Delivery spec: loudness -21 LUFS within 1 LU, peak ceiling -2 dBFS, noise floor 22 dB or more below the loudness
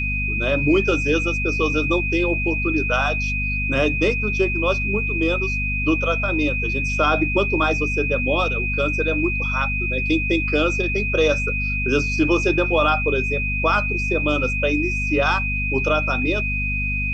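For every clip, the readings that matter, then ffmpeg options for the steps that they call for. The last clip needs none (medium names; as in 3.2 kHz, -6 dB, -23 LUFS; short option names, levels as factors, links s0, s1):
hum 50 Hz; highest harmonic 250 Hz; hum level -23 dBFS; steady tone 2.5 kHz; tone level -23 dBFS; loudness -20.0 LUFS; peak level -6.5 dBFS; loudness target -21.0 LUFS
-> -af "bandreject=f=50:t=h:w=4,bandreject=f=100:t=h:w=4,bandreject=f=150:t=h:w=4,bandreject=f=200:t=h:w=4,bandreject=f=250:t=h:w=4"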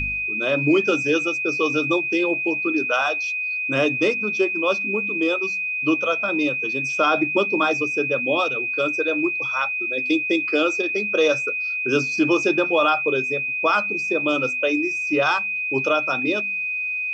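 hum not found; steady tone 2.5 kHz; tone level -23 dBFS
-> -af "bandreject=f=2500:w=30"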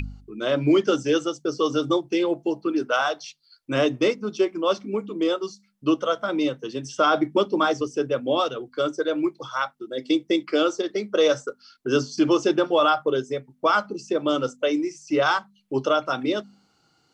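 steady tone not found; loudness -24.0 LUFS; peak level -9.5 dBFS; loudness target -21.0 LUFS
-> -af "volume=1.41"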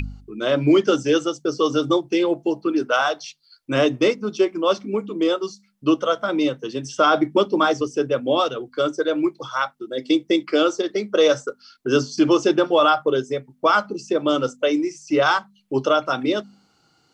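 loudness -21.0 LUFS; peak level -6.5 dBFS; noise floor -62 dBFS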